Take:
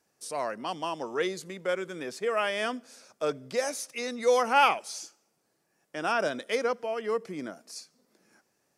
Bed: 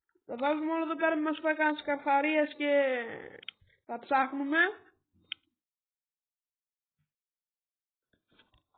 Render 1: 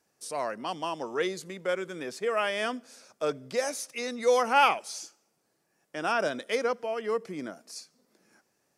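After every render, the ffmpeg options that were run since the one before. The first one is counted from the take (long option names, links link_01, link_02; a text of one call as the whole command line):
ffmpeg -i in.wav -af anull out.wav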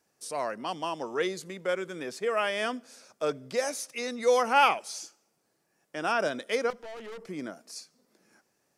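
ffmpeg -i in.wav -filter_complex "[0:a]asettb=1/sr,asplit=3[link_01][link_02][link_03];[link_01]atrim=end=6.704[link_04];[link_02]atrim=start=6.7:end=7.29,asetpts=PTS-STARTPTS,afade=type=in:duration=0.004:curve=qsin,afade=type=out:start_time=0.586:duration=0.004:curve=qsin,aeval=exprs='(tanh(100*val(0)+0.4)-tanh(0.4))/100':channel_layout=same[link_05];[link_03]atrim=start=7.286[link_06];[link_04][link_05]acrossfade=duration=0.004:curve1=hsin:curve2=qsin[link_07];[link_07][link_06]acrossfade=duration=0.004:curve1=qsin:curve2=hsin" out.wav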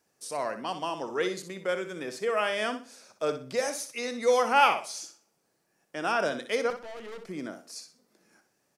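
ffmpeg -i in.wav -af "aecho=1:1:62|124|186:0.316|0.0854|0.0231" out.wav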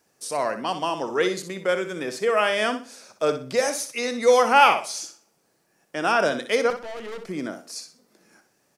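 ffmpeg -i in.wav -af "volume=6.5dB,alimiter=limit=-3dB:level=0:latency=1" out.wav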